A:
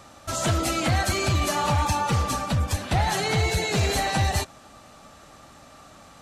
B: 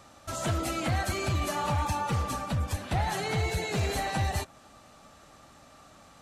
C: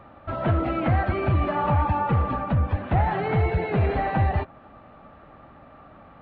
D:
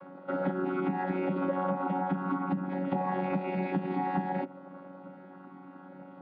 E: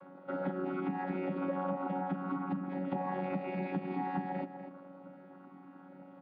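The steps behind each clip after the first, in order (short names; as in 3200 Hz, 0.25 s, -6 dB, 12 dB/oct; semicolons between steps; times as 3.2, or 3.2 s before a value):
dynamic EQ 5300 Hz, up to -4 dB, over -40 dBFS, Q 0.75; gain -5.5 dB
Gaussian blur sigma 3.9 samples; gain +7.5 dB
chord vocoder bare fifth, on F#3; compressor, threshold -27 dBFS, peak gain reduction 10.5 dB
outdoor echo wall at 42 m, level -10 dB; gain -5 dB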